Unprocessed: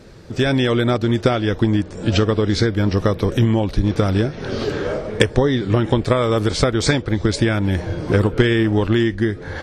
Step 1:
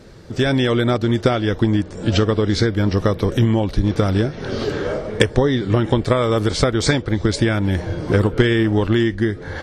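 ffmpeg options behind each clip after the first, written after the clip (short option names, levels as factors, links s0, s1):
-af "bandreject=f=2500:w=22"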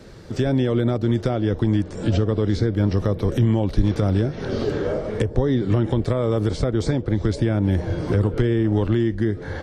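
-filter_complex "[0:a]acrossover=split=120|810[s0][s1][s2];[s1]alimiter=limit=0.2:level=0:latency=1:release=48[s3];[s2]acompressor=threshold=0.0141:ratio=5[s4];[s0][s3][s4]amix=inputs=3:normalize=0"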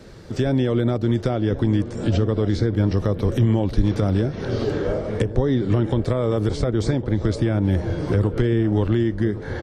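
-filter_complex "[0:a]asplit=2[s0][s1];[s1]adelay=1108,volume=0.2,highshelf=f=4000:g=-24.9[s2];[s0][s2]amix=inputs=2:normalize=0"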